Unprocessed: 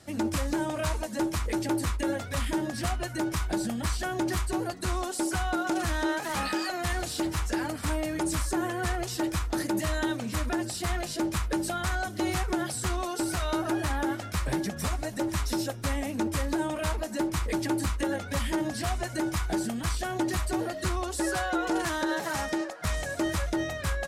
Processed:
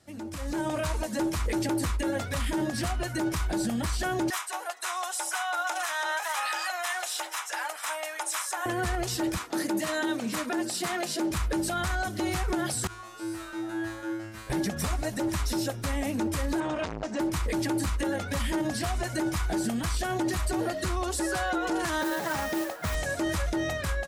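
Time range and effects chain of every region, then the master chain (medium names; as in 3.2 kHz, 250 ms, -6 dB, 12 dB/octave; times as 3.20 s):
4.30–8.66 s: high-pass 720 Hz 24 dB/octave + band-stop 4.5 kHz, Q 6.9
9.37–11.31 s: high-pass 170 Hz 24 dB/octave + short-mantissa float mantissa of 8-bit
12.87–14.50 s: peaking EQ 1.6 kHz +6.5 dB 0.88 oct + feedback comb 110 Hz, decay 0.75 s, mix 100%
16.60–17.20 s: low-pass 6.4 kHz 24 dB/octave + band-stop 4.2 kHz, Q 15 + transformer saturation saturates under 940 Hz
22.01–22.95 s: high-pass 61 Hz + treble shelf 6.3 kHz -10 dB + modulation noise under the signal 13 dB
whole clip: peak limiter -24 dBFS; level rider gain up to 11.5 dB; trim -8 dB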